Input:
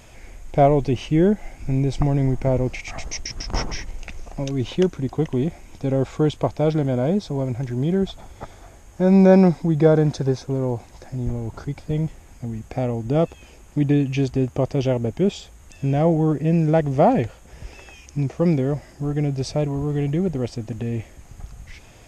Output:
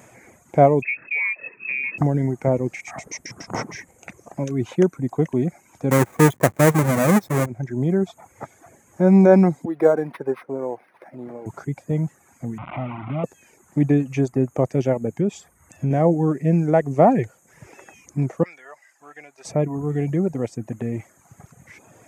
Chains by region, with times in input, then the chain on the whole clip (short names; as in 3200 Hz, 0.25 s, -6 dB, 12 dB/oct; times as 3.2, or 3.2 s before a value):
0.82–1.98 compressor 5:1, threshold -19 dBFS + inverted band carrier 2600 Hz
5.91–7.46 half-waves squared off + notch 1400 Hz, Q 15
9.65–11.46 companded quantiser 8-bit + HPF 350 Hz + decimation joined by straight lines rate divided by 6×
12.58–13.24 delta modulation 16 kbps, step -20.5 dBFS + fixed phaser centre 1700 Hz, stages 6 + compressor 2:1, threshold -25 dBFS
15.11–15.91 low shelf 120 Hz +8.5 dB + compressor 2.5:1, threshold -20 dBFS
18.43–19.45 Chebyshev high-pass 1400 Hz + high shelf 5800 Hz -8 dB
whole clip: HPF 120 Hz 24 dB/oct; reverb removal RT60 0.76 s; band shelf 3800 Hz -12 dB 1.2 oct; gain +2 dB